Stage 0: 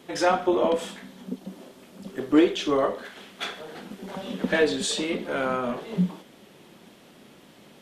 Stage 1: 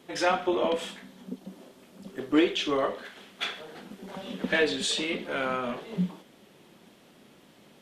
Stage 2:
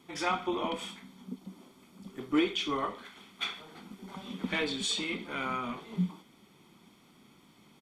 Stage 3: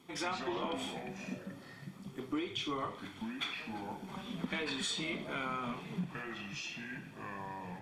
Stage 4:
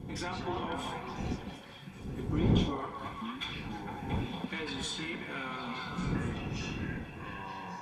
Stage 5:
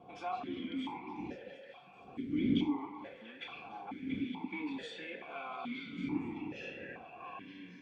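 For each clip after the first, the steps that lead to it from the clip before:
dynamic bell 2.7 kHz, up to +7 dB, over -44 dBFS, Q 0.87; trim -4.5 dB
comb 0.9 ms, depth 60%; trim -5 dB
compression 6:1, threshold -32 dBFS, peak gain reduction 10.5 dB; ever faster or slower copies 110 ms, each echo -5 st, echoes 2, each echo -6 dB; trim -1.5 dB
wind noise 200 Hz -36 dBFS; comb of notches 620 Hz; repeats whose band climbs or falls 229 ms, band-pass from 790 Hz, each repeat 0.7 oct, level 0 dB
stepped vowel filter 2.3 Hz; trim +7.5 dB

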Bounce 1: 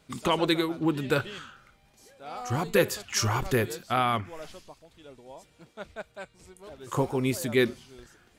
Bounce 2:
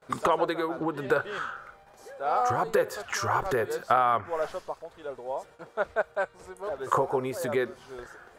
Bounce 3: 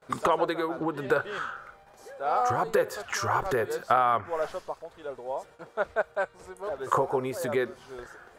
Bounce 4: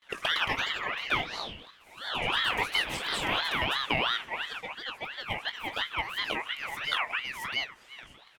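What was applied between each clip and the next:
compression 8:1, threshold -32 dBFS, peak gain reduction 15 dB; high-order bell 830 Hz +13.5 dB 2.4 oct; gate with hold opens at -45 dBFS
no audible change
ever faster or slower copies 137 ms, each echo +2 st, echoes 3; doubling 20 ms -11 dB; ring modulator with a swept carrier 2 kHz, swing 30%, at 2.9 Hz; trim -3 dB

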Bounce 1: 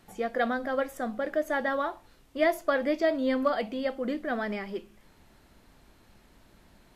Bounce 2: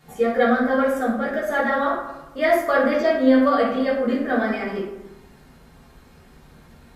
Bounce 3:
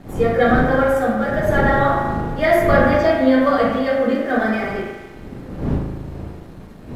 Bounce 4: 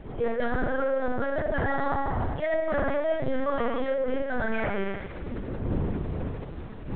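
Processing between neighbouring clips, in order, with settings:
reverberation RT60 1.0 s, pre-delay 3 ms, DRR -8 dB
wind noise 260 Hz -29 dBFS; spring tank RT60 1.5 s, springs 37 ms, chirp 50 ms, DRR 3 dB; crossover distortion -48 dBFS; trim +2 dB
reverse; compression 5:1, threshold -24 dBFS, peak gain reduction 13.5 dB; reverse; LPC vocoder at 8 kHz pitch kept

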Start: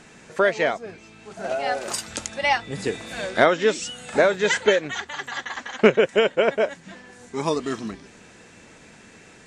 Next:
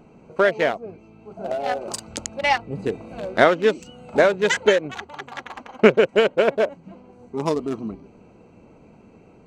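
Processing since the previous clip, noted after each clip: local Wiener filter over 25 samples; trim +2 dB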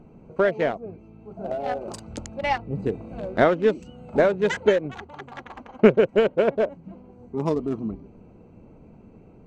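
tilt EQ -2.5 dB/octave; trim -4.5 dB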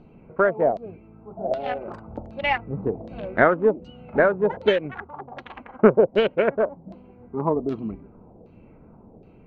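LFO low-pass saw down 1.3 Hz 580–4300 Hz; trim -1 dB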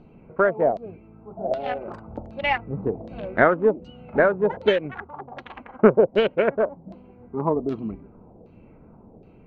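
no audible change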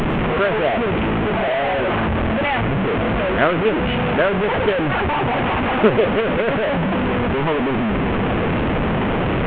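one-bit delta coder 16 kbps, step -13 dBFS; plate-style reverb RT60 0.5 s, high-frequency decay 0.9×, pre-delay 90 ms, DRR 17.5 dB

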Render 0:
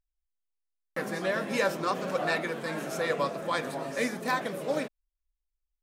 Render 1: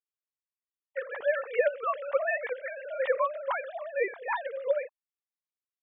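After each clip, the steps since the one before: formants replaced by sine waves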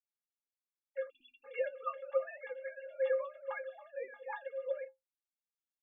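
inharmonic resonator 250 Hz, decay 0.2 s, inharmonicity 0.03; spectral selection erased 1.10–1.45 s, 360–2400 Hz; trim +1.5 dB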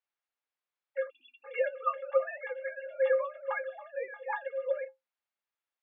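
band-pass 540–2700 Hz; trim +8.5 dB

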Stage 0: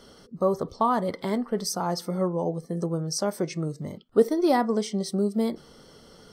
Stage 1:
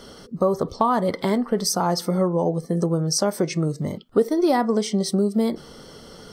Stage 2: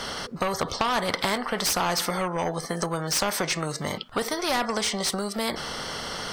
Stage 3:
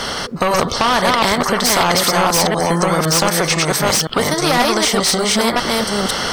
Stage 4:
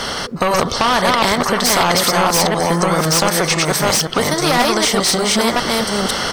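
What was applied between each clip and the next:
compression 2.5:1, threshold -26 dBFS, peak gain reduction 9 dB; trim +8 dB
peaking EQ 350 Hz -10.5 dB 1.4 oct; overdrive pedal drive 15 dB, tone 1.5 kHz, clips at -8 dBFS; spectrum-flattening compressor 2:1
chunks repeated in reverse 509 ms, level -1 dB; in parallel at +0.5 dB: peak limiter -16 dBFS, peak gain reduction 7 dB; on the sum: trim +4 dB
feedback delay 655 ms, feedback 53%, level -18 dB

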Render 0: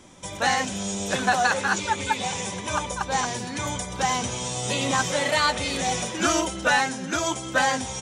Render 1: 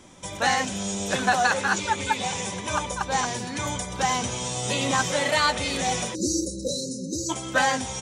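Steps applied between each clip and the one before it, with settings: spectral selection erased 6.15–7.30 s, 600–3800 Hz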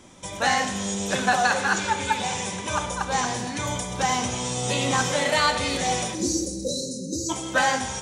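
Schroeder reverb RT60 1.1 s, combs from 25 ms, DRR 8 dB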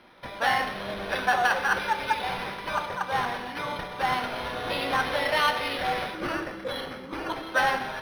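frequency weighting A; decimation joined by straight lines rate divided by 6×; trim -1 dB

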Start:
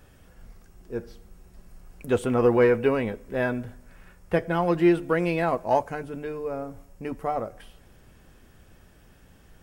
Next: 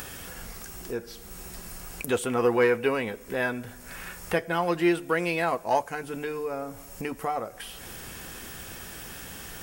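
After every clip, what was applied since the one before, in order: tilt EQ +2.5 dB/octave; band-stop 600 Hz, Q 12; upward compressor, threshold -26 dBFS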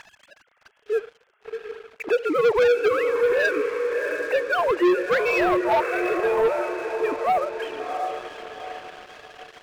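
formants replaced by sine waves; echo that smears into a reverb 689 ms, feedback 47%, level -7.5 dB; waveshaping leveller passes 3; trim -2.5 dB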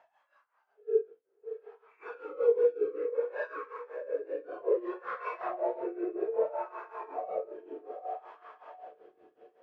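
phase randomisation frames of 200 ms; tremolo 5.3 Hz, depth 83%; wah-wah 0.62 Hz 330–1100 Hz, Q 4.4

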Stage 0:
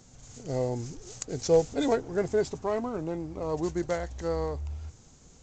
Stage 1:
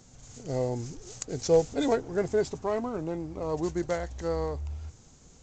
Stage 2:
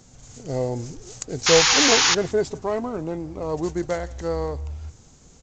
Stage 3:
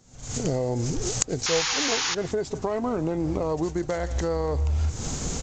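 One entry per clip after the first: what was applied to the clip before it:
no audible change
painted sound noise, 1.46–2.15 s, 750–7100 Hz -22 dBFS; echo from a far wall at 29 m, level -23 dB; trim +4 dB
recorder AGC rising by 64 dB/s; trim -8.5 dB

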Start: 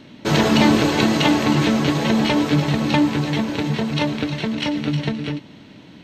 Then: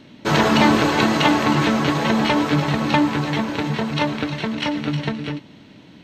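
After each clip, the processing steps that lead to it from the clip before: dynamic bell 1.2 kHz, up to +7 dB, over -36 dBFS, Q 0.83; trim -2 dB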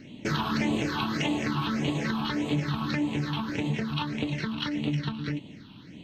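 compression 2.5:1, threshold -27 dBFS, peak gain reduction 11.5 dB; phase shifter stages 6, 1.7 Hz, lowest notch 510–1500 Hz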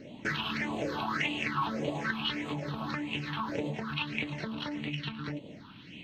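compression 2.5:1, threshold -32 dBFS, peak gain reduction 6.5 dB; sweeping bell 1.1 Hz 510–2900 Hz +16 dB; trim -4 dB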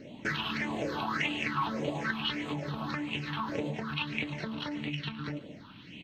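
echo from a far wall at 25 m, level -19 dB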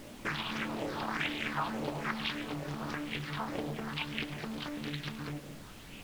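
added noise pink -49 dBFS; on a send at -17 dB: reverberation, pre-delay 5 ms; on the sum: loudspeaker Doppler distortion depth 0.66 ms; trim -3 dB

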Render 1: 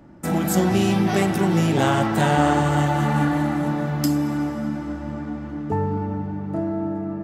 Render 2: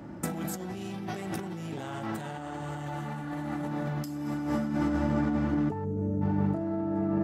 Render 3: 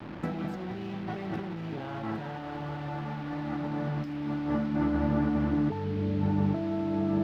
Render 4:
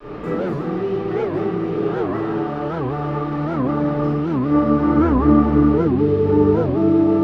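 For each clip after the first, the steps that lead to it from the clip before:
high-pass 61 Hz; time-frequency box 5.85–6.22 s, 680–5700 Hz -16 dB; compressor with a negative ratio -30 dBFS, ratio -1; trim -2.5 dB
bit crusher 7-bit; distance through air 320 m; trim +1 dB
small resonant body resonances 420/1200 Hz, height 15 dB, ringing for 50 ms; reverberation RT60 1.9 s, pre-delay 3 ms, DRR -14.5 dB; warped record 78 rpm, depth 250 cents; trim -8 dB

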